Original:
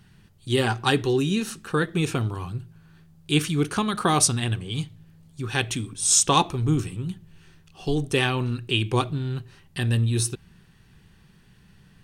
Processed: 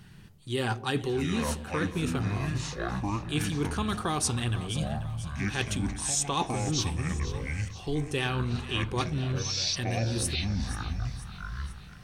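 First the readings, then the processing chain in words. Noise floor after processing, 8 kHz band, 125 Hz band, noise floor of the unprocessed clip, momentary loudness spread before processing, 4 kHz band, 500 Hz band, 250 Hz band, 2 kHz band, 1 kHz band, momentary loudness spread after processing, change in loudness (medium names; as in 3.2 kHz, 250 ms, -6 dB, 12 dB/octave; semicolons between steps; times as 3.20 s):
-46 dBFS, -7.5 dB, -4.0 dB, -56 dBFS, 15 LU, -4.5 dB, -6.0 dB, -4.5 dB, -4.5 dB, -6.5 dB, 7 LU, -6.5 dB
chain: ever faster or slower copies 425 ms, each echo -7 st, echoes 3, each echo -6 dB; reverse; compression 4:1, threshold -31 dBFS, peak gain reduction 14 dB; reverse; two-band feedback delay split 710 Hz, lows 116 ms, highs 486 ms, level -14 dB; trim +3 dB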